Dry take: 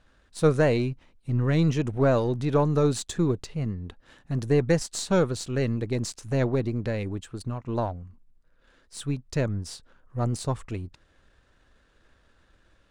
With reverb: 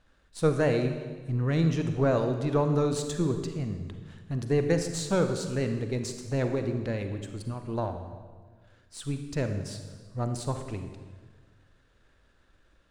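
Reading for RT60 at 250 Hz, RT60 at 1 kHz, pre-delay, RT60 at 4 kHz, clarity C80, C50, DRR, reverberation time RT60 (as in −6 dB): 1.7 s, 1.4 s, 36 ms, 1.2 s, 9.0 dB, 7.0 dB, 6.5 dB, 1.5 s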